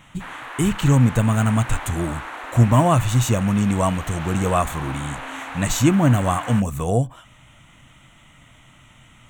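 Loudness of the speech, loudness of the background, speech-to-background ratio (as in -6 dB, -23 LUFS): -20.0 LUFS, -33.5 LUFS, 13.5 dB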